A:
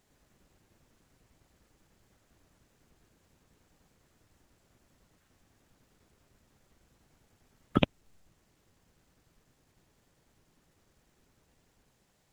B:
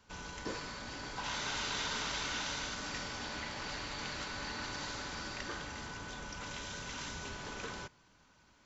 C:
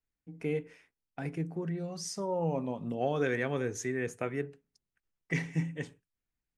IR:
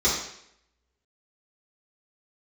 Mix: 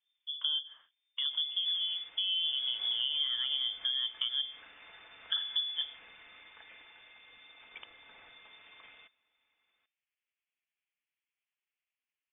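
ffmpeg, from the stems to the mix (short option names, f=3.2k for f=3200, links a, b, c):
-filter_complex "[0:a]bandpass=f=1.2k:t=q:w=2:csg=0,volume=-14dB[a];[1:a]equalizer=f=340:t=o:w=1.8:g=-14,aecho=1:1:4.8:0.35,adelay=1200,volume=-10dB[b];[2:a]lowshelf=f=750:t=q:w=1.5:g=10,volume=-3.5dB[c];[a][b][c]amix=inputs=3:normalize=0,lowpass=f=3.1k:t=q:w=0.5098,lowpass=f=3.1k:t=q:w=0.6013,lowpass=f=3.1k:t=q:w=0.9,lowpass=f=3.1k:t=q:w=2.563,afreqshift=-3600,acompressor=threshold=-30dB:ratio=6"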